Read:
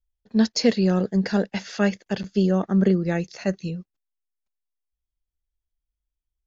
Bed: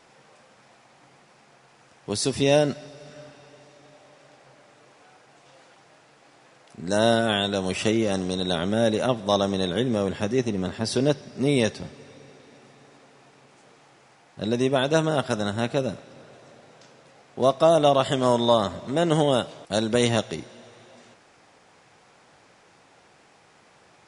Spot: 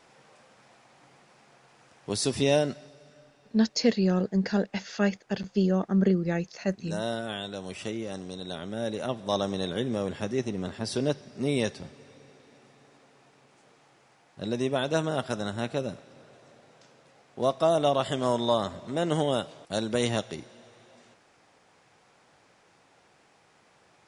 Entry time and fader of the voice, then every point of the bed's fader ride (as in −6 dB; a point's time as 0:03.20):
3.20 s, −4.0 dB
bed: 0:02.40 −2.5 dB
0:03.21 −11.5 dB
0:08.67 −11.5 dB
0:09.38 −5.5 dB